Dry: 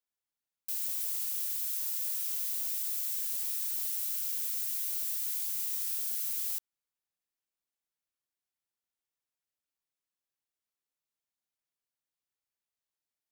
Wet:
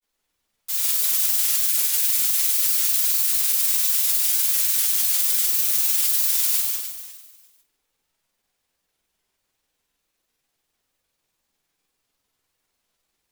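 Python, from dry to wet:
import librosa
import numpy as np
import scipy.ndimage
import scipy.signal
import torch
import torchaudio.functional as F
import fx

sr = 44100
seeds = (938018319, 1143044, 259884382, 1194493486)

p1 = x + fx.echo_feedback(x, sr, ms=144, feedback_pct=52, wet_db=-3.5, dry=0)
p2 = fx.room_shoebox(p1, sr, seeds[0], volume_m3=140.0, walls='mixed', distance_m=3.8)
p3 = fx.granulator(p2, sr, seeds[1], grain_ms=100.0, per_s=20.0, spray_ms=27.0, spread_st=3)
y = p3 * 10.0 ** (5.5 / 20.0)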